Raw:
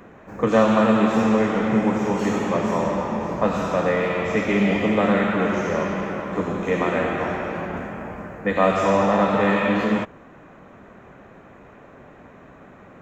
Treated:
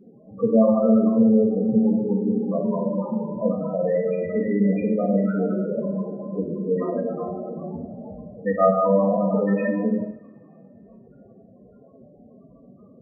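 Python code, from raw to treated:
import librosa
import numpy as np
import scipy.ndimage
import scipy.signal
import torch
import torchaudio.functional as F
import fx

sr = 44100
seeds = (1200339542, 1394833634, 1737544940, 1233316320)

y = fx.spec_topn(x, sr, count=8)
y = fx.rev_double_slope(y, sr, seeds[0], early_s=0.5, late_s=2.6, knee_db=-26, drr_db=0.0)
y = y * 10.0 ** (-2.5 / 20.0)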